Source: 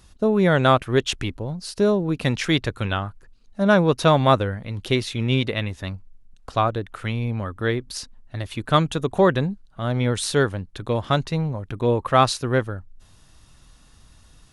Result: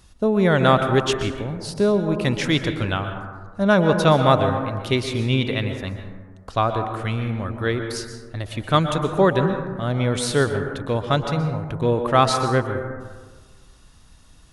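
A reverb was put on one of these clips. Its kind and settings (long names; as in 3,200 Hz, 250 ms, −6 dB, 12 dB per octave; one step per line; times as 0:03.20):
dense smooth reverb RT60 1.5 s, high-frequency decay 0.3×, pre-delay 110 ms, DRR 6 dB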